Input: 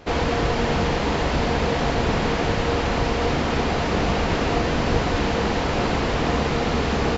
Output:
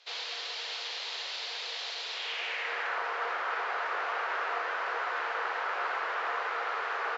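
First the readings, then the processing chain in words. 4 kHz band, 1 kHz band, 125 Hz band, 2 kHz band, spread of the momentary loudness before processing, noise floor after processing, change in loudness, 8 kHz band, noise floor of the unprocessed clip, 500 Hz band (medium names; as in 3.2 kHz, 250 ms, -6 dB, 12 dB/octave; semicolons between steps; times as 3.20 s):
-6.5 dB, -8.0 dB, under -40 dB, -5.0 dB, 1 LU, -39 dBFS, -10.5 dB, no reading, -23 dBFS, -17.5 dB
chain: steep high-pass 400 Hz 36 dB/octave; band-pass sweep 4 kHz -> 1.4 kHz, 2.09–2.99 s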